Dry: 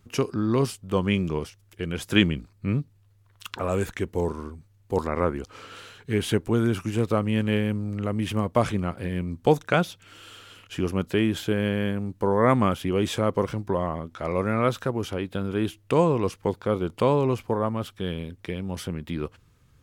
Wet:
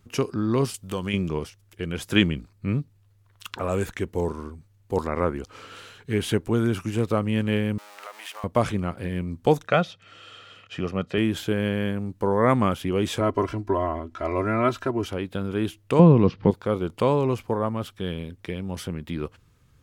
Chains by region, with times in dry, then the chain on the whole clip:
0.74–1.14 s: treble shelf 2.6 kHz +10.5 dB + compression 2:1, threshold -28 dBFS
7.78–8.44 s: jump at every zero crossing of -33.5 dBFS + high-pass 710 Hz 24 dB/octave + compression 3:1, threshold -35 dBFS
9.67–11.18 s: band-pass 120–4600 Hz + comb 1.6 ms, depth 44%
13.20–15.06 s: treble shelf 7.2 kHz -11 dB + band-stop 3.5 kHz, Q 9.5 + comb 3 ms, depth 84%
15.99–16.51 s: steep low-pass 4.8 kHz + peaking EQ 170 Hz +12 dB 1.9 oct + upward compressor, threshold -29 dBFS
whole clip: none

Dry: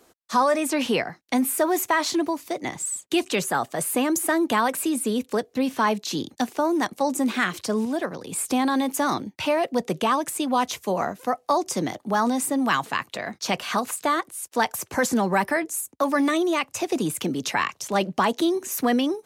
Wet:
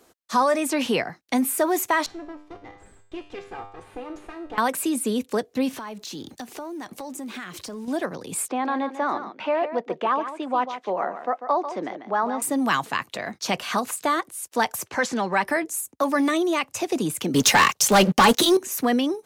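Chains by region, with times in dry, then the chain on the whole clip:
2.06–4.58 s: comb filter that takes the minimum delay 2.5 ms + tape spacing loss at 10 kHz 25 dB + feedback comb 100 Hz, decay 0.59 s, mix 80%
5.73–7.88 s: companding laws mixed up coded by mu + compression 4:1, threshold -34 dBFS
8.48–12.42 s: band-pass 370–2000 Hz + delay 144 ms -10.5 dB
14.88–15.46 s: low-pass 3.8 kHz + tilt EQ +2.5 dB/octave
17.34–18.57 s: treble shelf 3.7 kHz +7 dB + comb of notches 330 Hz + waveshaping leveller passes 3
whole clip: none

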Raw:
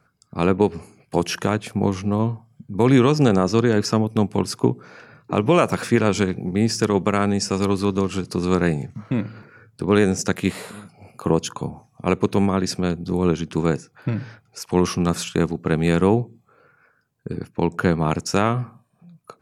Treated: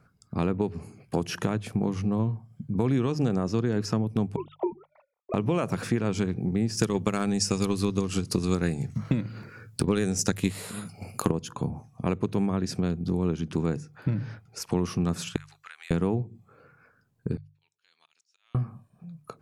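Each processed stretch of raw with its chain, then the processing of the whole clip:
4.36–5.34 s: formants replaced by sine waves + gate -45 dBFS, range -25 dB + static phaser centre 660 Hz, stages 4
6.77–11.32 s: transient shaper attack +7 dB, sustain 0 dB + treble shelf 2.9 kHz +12 dB
15.36–15.91 s: high-pass 1.4 kHz 24 dB/octave + compression, threshold -39 dBFS
17.37–18.55 s: ladder band-pass 4.4 kHz, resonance 35% + compression, threshold -46 dBFS + slow attack 317 ms
whole clip: bass shelf 270 Hz +9.5 dB; hum notches 50/100/150 Hz; compression 3:1, threshold -23 dBFS; trim -2.5 dB

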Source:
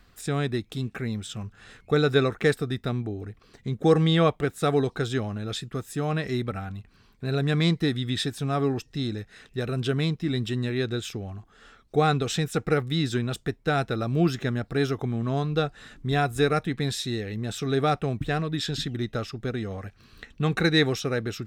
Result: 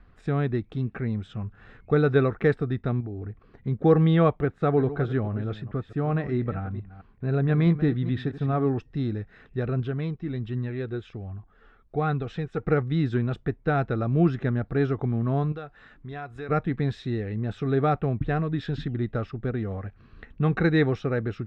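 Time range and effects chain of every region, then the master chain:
3.00–3.67 s: treble shelf 4.5 kHz -6.5 dB + compression, threshold -32 dBFS
4.41–8.72 s: chunks repeated in reverse 217 ms, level -13 dB + treble shelf 5.2 kHz -10.5 dB
9.80–12.63 s: low-pass 8.1 kHz + flange 1.3 Hz, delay 0.5 ms, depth 2.3 ms, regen +63%
15.52–16.49 s: bass shelf 490 Hz -10.5 dB + compression 2:1, threshold -38 dBFS
whole clip: low-pass 1.8 kHz 12 dB/octave; bass shelf 130 Hz +5.5 dB

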